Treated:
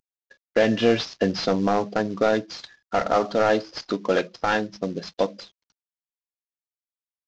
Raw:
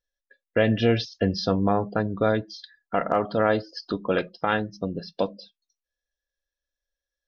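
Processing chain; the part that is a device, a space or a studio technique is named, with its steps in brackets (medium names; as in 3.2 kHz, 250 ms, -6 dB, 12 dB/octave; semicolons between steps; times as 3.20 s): early wireless headset (high-pass 200 Hz 12 dB/octave; CVSD coder 32 kbps); trim +3.5 dB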